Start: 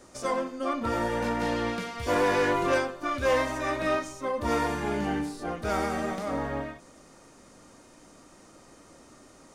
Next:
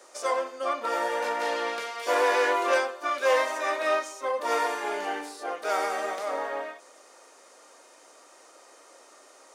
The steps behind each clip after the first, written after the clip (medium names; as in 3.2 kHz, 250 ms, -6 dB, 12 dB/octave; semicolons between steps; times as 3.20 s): high-pass 440 Hz 24 dB/octave; trim +2.5 dB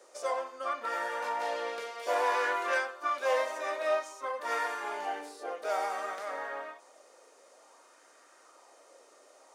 dynamic bell 320 Hz, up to -4 dB, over -37 dBFS, Q 1.1; sweeping bell 0.55 Hz 470–1700 Hz +7 dB; trim -7.5 dB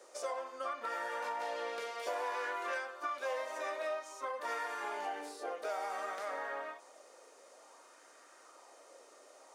compression 4:1, threshold -36 dBFS, peak gain reduction 10.5 dB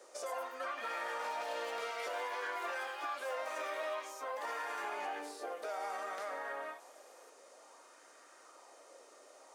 peak limiter -32 dBFS, peak gain reduction 7 dB; ever faster or slower copies 149 ms, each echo +5 st, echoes 3, each echo -6 dB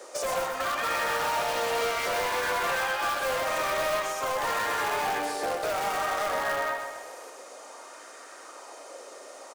in parallel at -6 dB: integer overflow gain 35.5 dB; on the sum: feedback delay 127 ms, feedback 52%, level -7 dB; trim +9 dB